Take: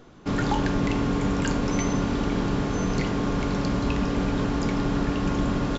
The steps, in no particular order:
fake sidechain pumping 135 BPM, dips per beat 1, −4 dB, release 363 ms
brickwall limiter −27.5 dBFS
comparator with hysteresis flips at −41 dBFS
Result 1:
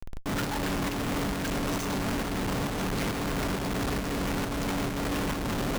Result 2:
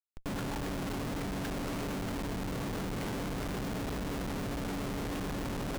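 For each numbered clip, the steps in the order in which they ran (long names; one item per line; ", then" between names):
comparator with hysteresis, then brickwall limiter, then fake sidechain pumping
brickwall limiter, then fake sidechain pumping, then comparator with hysteresis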